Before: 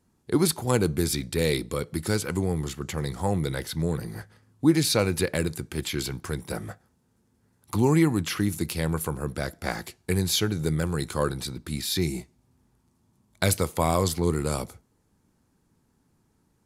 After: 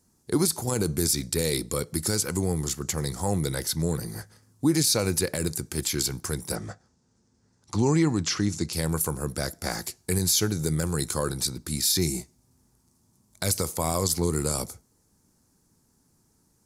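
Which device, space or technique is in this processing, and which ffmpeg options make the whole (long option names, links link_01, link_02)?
over-bright horn tweeter: -filter_complex "[0:a]highshelf=frequency=4200:width_type=q:width=1.5:gain=8.5,alimiter=limit=-12.5dB:level=0:latency=1:release=51,asettb=1/sr,asplit=3[link_01][link_02][link_03];[link_01]atrim=end=6.554[link_04];[link_02]atrim=start=6.55:end=8.73,asetpts=PTS-STARTPTS,afade=type=in:duration=0.004:curve=qsin,afade=type=out:start_time=2.176:duration=0.004:curve=qsin,lowpass=frequency=6800:width=0.5412,lowpass=frequency=6800:width=1.3066[link_05];[link_03]atrim=start=8.726[link_06];[link_04][link_05]acrossfade=duration=0.004:curve1=hsin:curve2=qsin[link_07];[link_07][link_06]acrossfade=duration=0.004:curve1=qsin:curve2=hsin"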